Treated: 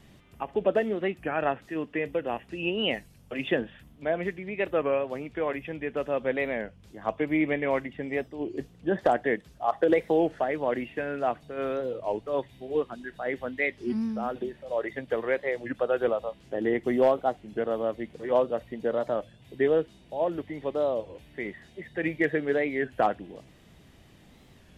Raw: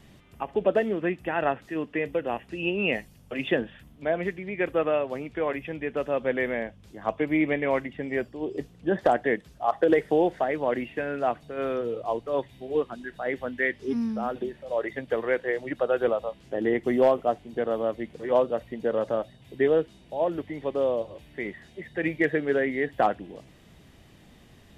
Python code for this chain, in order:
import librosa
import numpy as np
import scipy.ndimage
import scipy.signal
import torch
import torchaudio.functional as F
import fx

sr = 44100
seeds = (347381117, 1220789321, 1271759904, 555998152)

y = fx.record_warp(x, sr, rpm=33.33, depth_cents=160.0)
y = y * 10.0 ** (-1.5 / 20.0)